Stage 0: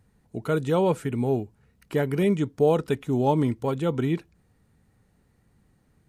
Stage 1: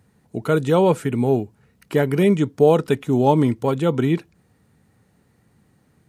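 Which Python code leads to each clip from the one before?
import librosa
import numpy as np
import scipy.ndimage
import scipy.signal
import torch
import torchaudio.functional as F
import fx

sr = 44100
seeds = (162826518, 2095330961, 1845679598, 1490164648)

y = scipy.signal.sosfilt(scipy.signal.butter(2, 95.0, 'highpass', fs=sr, output='sos'), x)
y = y * 10.0 ** (6.0 / 20.0)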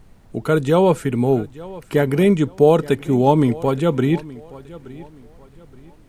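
y = fx.echo_feedback(x, sr, ms=873, feedback_pct=31, wet_db=-19.5)
y = fx.dmg_noise_colour(y, sr, seeds[0], colour='brown', level_db=-48.0)
y = y * 10.0 ** (1.5 / 20.0)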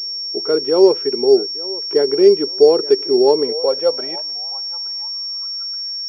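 y = fx.filter_sweep_highpass(x, sr, from_hz=390.0, to_hz=1600.0, start_s=3.19, end_s=5.95, q=6.8)
y = fx.pwm(y, sr, carrier_hz=5500.0)
y = y * 10.0 ** (-7.5 / 20.0)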